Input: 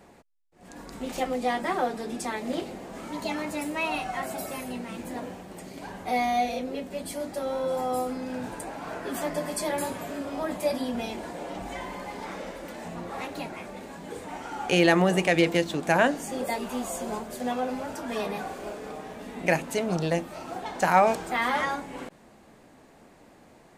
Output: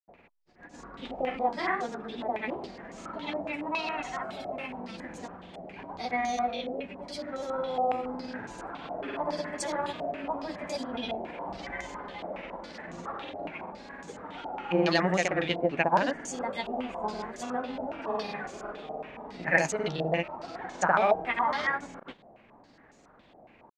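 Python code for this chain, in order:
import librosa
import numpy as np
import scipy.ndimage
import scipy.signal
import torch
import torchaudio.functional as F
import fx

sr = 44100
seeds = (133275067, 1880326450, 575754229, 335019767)

y = fx.granulator(x, sr, seeds[0], grain_ms=100.0, per_s=20.0, spray_ms=100.0, spread_st=0)
y = fx.filter_held_lowpass(y, sr, hz=7.2, low_hz=700.0, high_hz=6600.0)
y = y * librosa.db_to_amplitude(-4.0)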